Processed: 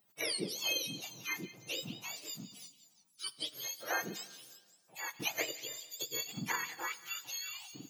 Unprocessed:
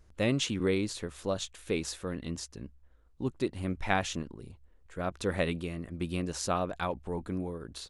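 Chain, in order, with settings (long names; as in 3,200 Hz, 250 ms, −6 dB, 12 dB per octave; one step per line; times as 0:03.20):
frequency axis turned over on the octave scale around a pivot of 1,100 Hz
high-pass filter 780 Hz 6 dB per octave
0:05.10–0:06.56: transient designer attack +6 dB, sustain −9 dB
echo through a band-pass that steps 178 ms, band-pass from 3,600 Hz, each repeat 0.7 octaves, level −10 dB
dense smooth reverb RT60 1.6 s, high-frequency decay 0.75×, DRR 16.5 dB
level −2 dB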